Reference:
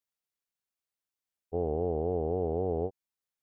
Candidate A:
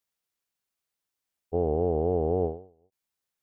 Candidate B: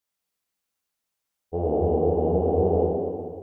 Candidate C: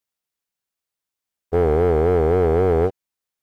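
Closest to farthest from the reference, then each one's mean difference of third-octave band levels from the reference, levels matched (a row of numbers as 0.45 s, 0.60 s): B, A, C; 2.0 dB, 4.0 dB, 7.0 dB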